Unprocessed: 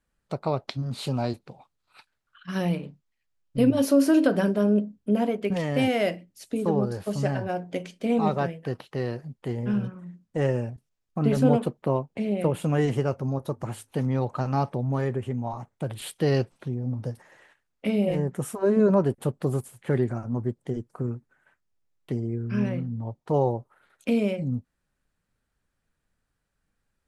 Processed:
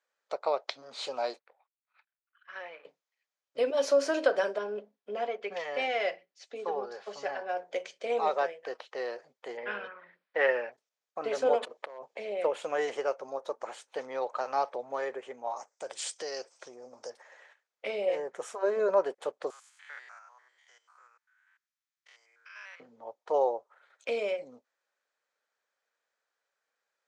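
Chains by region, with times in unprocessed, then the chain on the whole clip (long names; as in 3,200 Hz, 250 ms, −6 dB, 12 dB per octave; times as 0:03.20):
0:01.39–0:02.85: mu-law and A-law mismatch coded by A + resonant band-pass 1,900 Hz, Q 1.6 + spectral tilt −3 dB per octave
0:04.58–0:07.57: low-pass filter 5,000 Hz + parametric band 500 Hz −6.5 dB 0.31 octaves + notch comb filter 310 Hz
0:09.57–0:10.72: Butterworth low-pass 4,700 Hz + parametric band 1,900 Hz +11.5 dB 1.6 octaves
0:11.62–0:12.17: notch filter 1,400 Hz, Q 8.2 + hard clipping −18.5 dBFS + compressor whose output falls as the input rises −37 dBFS
0:15.56–0:17.10: flat-topped bell 6,600 Hz +14.5 dB 1.1 octaves + downward compressor 10 to 1, threshold −26 dBFS
0:19.50–0:22.80: spectrum averaged block by block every 100 ms + high-pass filter 1,200 Hz 24 dB per octave
whole clip: Chebyshev band-pass filter 500–6,800 Hz, order 3; notch filter 2,800 Hz, Q 19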